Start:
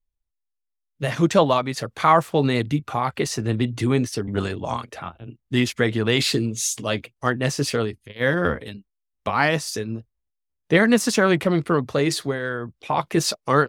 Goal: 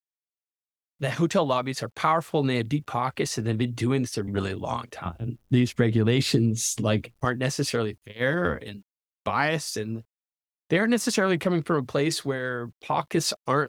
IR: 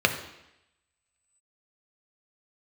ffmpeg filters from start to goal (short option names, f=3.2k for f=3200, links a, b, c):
-filter_complex "[0:a]asettb=1/sr,asplit=3[a][b][c];[a]atrim=end=5.054[d];[b]atrim=start=5.05:end=7.25,asetpts=PTS-STARTPTS,afade=t=in:d=0.004:c=qsin,afade=t=out:st=2.196:d=0.004:c=qsin,lowshelf=f=420:g=11.5[e];[c]atrim=start=7.246[f];[d][e]acrossfade=d=0.004:c1=hsin:c2=qsin[g];[g][f]acrossfade=d=0.004:c1=qsin:c2=hsin,acompressor=threshold=-16dB:ratio=3,acrusher=bits=10:mix=0:aa=0.000001,volume=-2.5dB"